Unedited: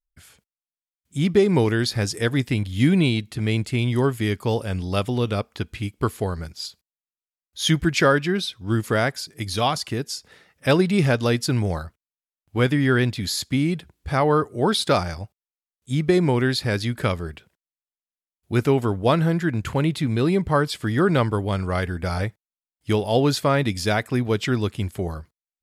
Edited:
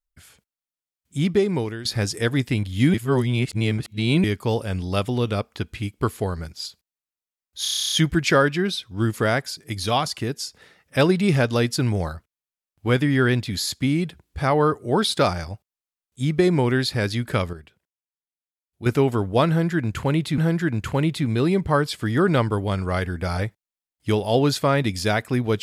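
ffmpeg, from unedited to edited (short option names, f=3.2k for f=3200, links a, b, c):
-filter_complex "[0:a]asplit=17[a][b][c][d][e][f][g][h][i][j][k][l][m][n][o][p][q];[a]atrim=end=1.85,asetpts=PTS-STARTPTS,afade=t=out:st=1.2:d=0.65:silence=0.177828[r];[b]atrim=start=1.85:end=2.942,asetpts=PTS-STARTPTS,afade=t=in:d=0.004:c=hsin:silence=0.177828[s];[c]atrim=start=2.938:end=4.242,asetpts=PTS-STARTPTS,areverse[t];[d]atrim=start=4.238:end=7.652[u];[e]atrim=start=7.618:end=7.652[v];[f]atrim=start=7.618:end=7.652[w];[g]atrim=start=7.618:end=7.652[x];[h]atrim=start=7.618:end=7.652[y];[i]atrim=start=7.618:end=7.652[z];[j]atrim=start=7.618:end=7.652[aa];[k]atrim=start=7.618:end=7.652[ab];[l]atrim=start=7.618:end=7.652[ac];[m]atrim=start=7.618:end=7.652[ad];[n]atrim=start=7.618:end=17.232[ae];[o]atrim=start=17.228:end=18.562,asetpts=PTS-STARTPTS,volume=-8.5dB[af];[p]atrim=start=18.558:end=20.082[ag];[q]atrim=start=19.188[ah];[r][s]concat=n=2:v=0:a=1[ai];[ai][t]acrossfade=d=0.004:c1=hsin:c2=hsin[aj];[aj][u]acrossfade=d=0.004:c1=hsin:c2=hsin[ak];[ak][v]acrossfade=d=0.004:c1=hsin:c2=hsin[al];[al][w]acrossfade=d=0.004:c1=hsin:c2=hsin[am];[am][x]acrossfade=d=0.004:c1=hsin:c2=hsin[an];[an][y]acrossfade=d=0.004:c1=hsin:c2=hsin[ao];[ao][z]acrossfade=d=0.004:c1=hsin:c2=hsin[ap];[ap][aa]acrossfade=d=0.004:c1=hsin:c2=hsin[aq];[aq][ab]acrossfade=d=0.004:c1=hsin:c2=hsin[ar];[ar][ac]acrossfade=d=0.004:c1=hsin:c2=hsin[as];[as][ad]acrossfade=d=0.004:c1=hsin:c2=hsin[at];[at][ae]acrossfade=d=0.004:c1=hsin:c2=hsin[au];[au][af]acrossfade=d=0.004:c1=hsin:c2=hsin[av];[av][ag]acrossfade=d=0.004:c1=hsin:c2=hsin[aw];[aw][ah]acrossfade=d=0.004:c1=hsin:c2=hsin"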